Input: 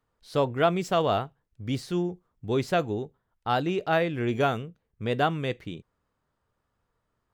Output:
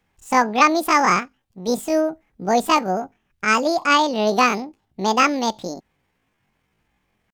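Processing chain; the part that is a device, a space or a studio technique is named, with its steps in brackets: 1.20–1.71 s: bass shelf 320 Hz -4.5 dB; chipmunk voice (pitch shift +10 st); trim +8 dB

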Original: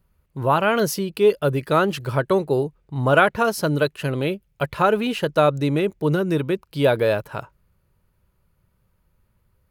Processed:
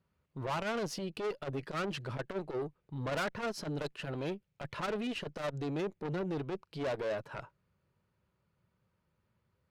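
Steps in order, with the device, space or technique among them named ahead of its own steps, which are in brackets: valve radio (band-pass 110–5800 Hz; valve stage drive 24 dB, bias 0.25; transformer saturation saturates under 190 Hz); trim -6.5 dB

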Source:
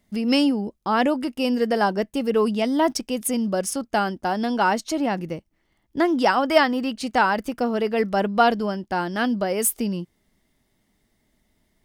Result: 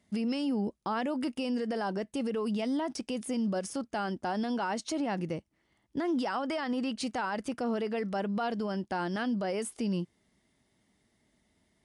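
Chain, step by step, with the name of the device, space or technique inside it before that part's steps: podcast mastering chain (high-pass 66 Hz; de-esser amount 60%; compression 3:1, threshold -21 dBFS, peak gain reduction 7.5 dB; peak limiter -22 dBFS, peak gain reduction 11 dB; trim -2 dB; MP3 96 kbps 24 kHz)

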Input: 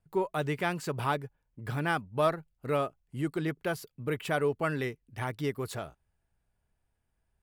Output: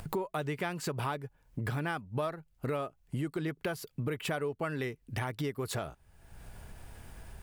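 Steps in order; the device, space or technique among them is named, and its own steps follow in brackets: upward and downward compression (upward compressor, threshold -30 dBFS; compression 6:1, threshold -35 dBFS, peak gain reduction 13.5 dB); trim +4 dB

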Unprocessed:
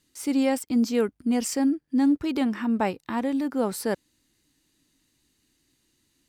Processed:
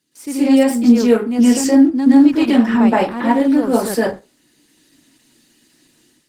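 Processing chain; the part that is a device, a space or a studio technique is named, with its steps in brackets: far-field microphone of a smart speaker (reverberation RT60 0.30 s, pre-delay 113 ms, DRR -8.5 dB; high-pass 140 Hz 24 dB/octave; level rider gain up to 8 dB; Opus 16 kbps 48 kHz)

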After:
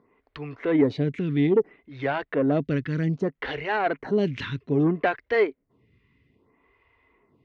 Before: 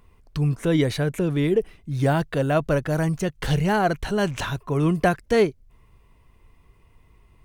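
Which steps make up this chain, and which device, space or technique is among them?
vibe pedal into a guitar amplifier (lamp-driven phase shifter 0.62 Hz; valve stage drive 15 dB, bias 0.35; cabinet simulation 100–4100 Hz, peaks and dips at 270 Hz +8 dB, 420 Hz +5 dB, 2 kHz +8 dB)

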